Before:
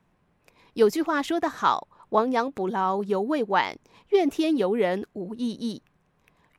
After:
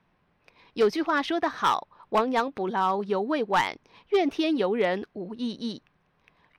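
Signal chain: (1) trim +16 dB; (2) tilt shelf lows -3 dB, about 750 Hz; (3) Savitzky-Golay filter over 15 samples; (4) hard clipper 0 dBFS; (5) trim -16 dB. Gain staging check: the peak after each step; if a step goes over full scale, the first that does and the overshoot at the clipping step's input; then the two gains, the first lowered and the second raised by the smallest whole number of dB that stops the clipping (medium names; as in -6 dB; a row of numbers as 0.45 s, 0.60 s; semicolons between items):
+8.5 dBFS, +10.0 dBFS, +10.0 dBFS, 0.0 dBFS, -16.0 dBFS; step 1, 10.0 dB; step 1 +6 dB, step 5 -6 dB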